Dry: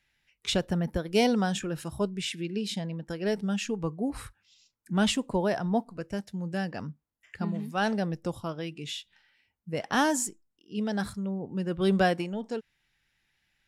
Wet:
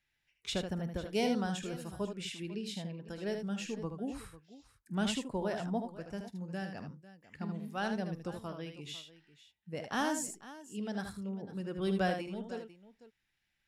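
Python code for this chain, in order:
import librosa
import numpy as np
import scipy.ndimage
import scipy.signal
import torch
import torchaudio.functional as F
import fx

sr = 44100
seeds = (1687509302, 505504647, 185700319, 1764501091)

y = fx.echo_multitap(x, sr, ms=(49, 77, 498), db=(-16.5, -7.0, -16.5))
y = y * 10.0 ** (-8.5 / 20.0)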